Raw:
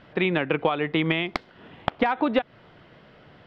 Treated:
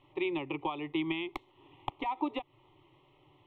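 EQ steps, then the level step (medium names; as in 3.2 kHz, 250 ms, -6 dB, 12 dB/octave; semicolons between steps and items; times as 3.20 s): static phaser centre 320 Hz, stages 8; static phaser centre 1 kHz, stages 8; -4.5 dB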